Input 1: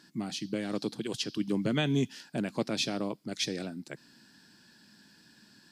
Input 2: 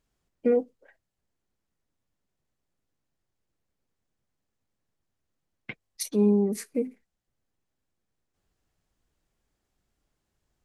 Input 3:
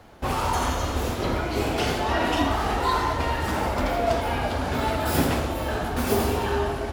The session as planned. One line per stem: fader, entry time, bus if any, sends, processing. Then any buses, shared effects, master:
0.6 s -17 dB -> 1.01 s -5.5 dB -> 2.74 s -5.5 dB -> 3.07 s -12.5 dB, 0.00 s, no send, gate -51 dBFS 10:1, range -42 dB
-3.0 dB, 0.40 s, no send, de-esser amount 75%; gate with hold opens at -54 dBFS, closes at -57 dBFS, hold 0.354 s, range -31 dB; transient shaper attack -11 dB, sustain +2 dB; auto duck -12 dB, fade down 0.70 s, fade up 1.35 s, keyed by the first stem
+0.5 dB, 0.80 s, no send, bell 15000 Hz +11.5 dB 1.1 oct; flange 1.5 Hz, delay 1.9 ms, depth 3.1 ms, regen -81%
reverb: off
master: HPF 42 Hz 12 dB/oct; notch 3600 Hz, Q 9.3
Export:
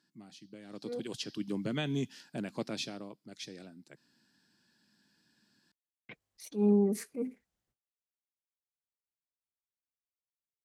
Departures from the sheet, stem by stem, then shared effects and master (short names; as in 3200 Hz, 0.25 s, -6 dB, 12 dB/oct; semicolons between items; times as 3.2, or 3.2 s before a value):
stem 1: missing gate -51 dBFS 10:1, range -42 dB; stem 3: muted; master: missing notch 3600 Hz, Q 9.3